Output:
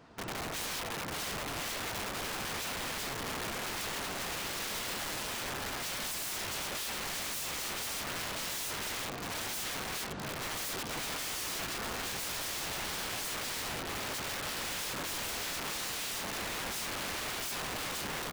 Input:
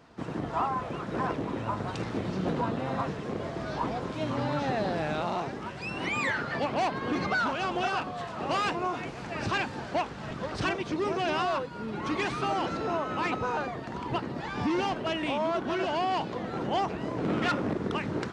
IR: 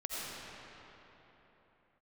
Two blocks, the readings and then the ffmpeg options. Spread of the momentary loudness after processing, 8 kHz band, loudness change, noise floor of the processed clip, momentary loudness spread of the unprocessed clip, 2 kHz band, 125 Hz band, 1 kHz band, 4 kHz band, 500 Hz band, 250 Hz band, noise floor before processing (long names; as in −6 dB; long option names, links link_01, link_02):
1 LU, +14.5 dB, −4.5 dB, −39 dBFS, 7 LU, −3.5 dB, −11.0 dB, −10.5 dB, +3.5 dB, −11.5 dB, −13.5 dB, −39 dBFS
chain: -af "aecho=1:1:1047|2094|3141:0.398|0.0796|0.0159,aeval=exprs='(mod(37.6*val(0)+1,2)-1)/37.6':channel_layout=same,volume=-1dB"